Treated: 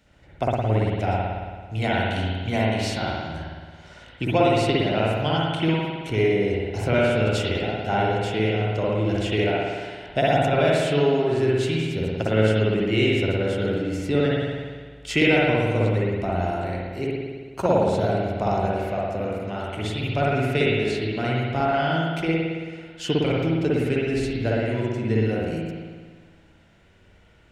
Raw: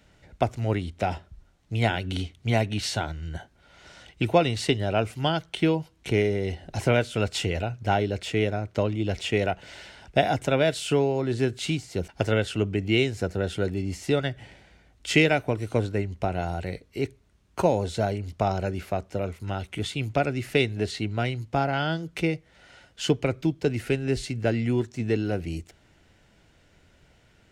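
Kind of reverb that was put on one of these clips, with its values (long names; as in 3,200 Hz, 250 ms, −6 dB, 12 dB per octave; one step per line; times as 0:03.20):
spring reverb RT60 1.6 s, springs 55 ms, chirp 60 ms, DRR −5.5 dB
level −3 dB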